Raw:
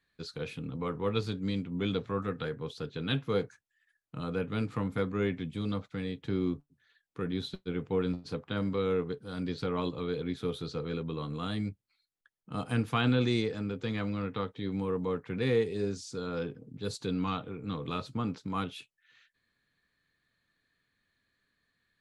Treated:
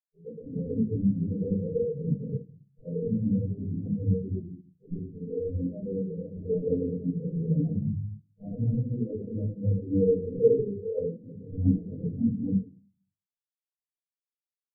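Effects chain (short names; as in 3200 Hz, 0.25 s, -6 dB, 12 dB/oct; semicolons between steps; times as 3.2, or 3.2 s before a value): block floating point 3-bit; elliptic low-pass 650 Hz, stop band 60 dB; notches 60/120/180 Hz; in parallel at 0 dB: negative-ratio compressor -37 dBFS, ratio -1; on the sum: limiter -27 dBFS, peak gain reduction 10.5 dB; on a send: frequency-shifting echo 0.281 s, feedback 39%, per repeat +51 Hz, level -15 dB; on the sum: plain phase-vocoder stretch 0.67×; crossover distortion -57 dBFS; shoebox room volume 210 m³, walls mixed, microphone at 4.8 m; spectral expander 2.5:1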